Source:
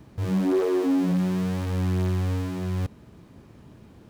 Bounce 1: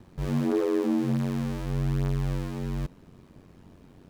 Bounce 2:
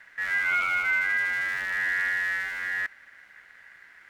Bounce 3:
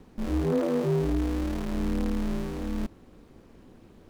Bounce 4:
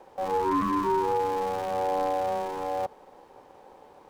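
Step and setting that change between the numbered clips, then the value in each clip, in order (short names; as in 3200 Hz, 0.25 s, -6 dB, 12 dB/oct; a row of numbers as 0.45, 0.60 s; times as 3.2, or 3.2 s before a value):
ring modulator, frequency: 46, 1800, 120, 660 Hz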